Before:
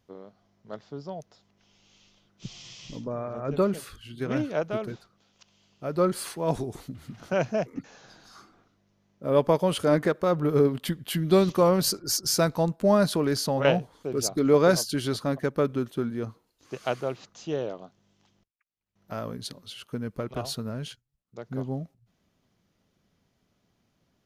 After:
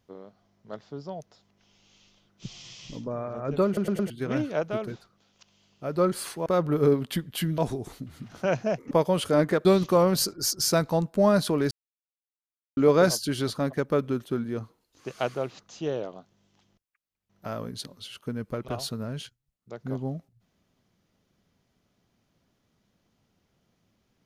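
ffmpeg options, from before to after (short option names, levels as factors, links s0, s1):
-filter_complex "[0:a]asplit=11[s0][s1][s2][s3][s4][s5][s6][s7][s8][s9][s10];[s0]atrim=end=3.772[s11];[s1]atrim=start=3.658:end=3.772[s12];[s2]atrim=start=3.658:end=3.772[s13];[s3]atrim=start=3.658:end=3.772[s14];[s4]atrim=start=4.098:end=6.462[s15];[s5]atrim=start=10.188:end=11.312[s16];[s6]atrim=start=6.458:end=7.792[s17];[s7]atrim=start=9.448:end=10.192[s18];[s8]atrim=start=11.308:end=13.37,asetpts=PTS-STARTPTS,afade=t=out:st=2.058:d=0.004:c=hsin[s19];[s9]atrim=start=13.37:end=14.43,asetpts=PTS-STARTPTS,volume=0[s20];[s10]atrim=start=14.43,asetpts=PTS-STARTPTS,afade=t=in:d=0.004:c=hsin[s21];[s11][s12]acrossfade=d=0.004:c1=hsin:c2=hsin[s22];[s22][s13]acrossfade=d=0.004:c1=hsin:c2=hsin[s23];[s23][s14]acrossfade=d=0.004:c1=hsin:c2=hsin[s24];[s24][s15]acrossfade=d=0.004:c1=hsin:c2=hsin[s25];[s25][s16]acrossfade=d=0.004:c1=hsin:c2=hsin[s26];[s26][s17]acrossfade=d=0.004:c1=hsin:c2=hsin[s27];[s27][s18]acrossfade=d=0.004:c1=hsin:c2=hsin[s28];[s19][s20][s21]concat=n=3:v=0:a=1[s29];[s28][s29]acrossfade=d=0.004:c1=hsin:c2=hsin"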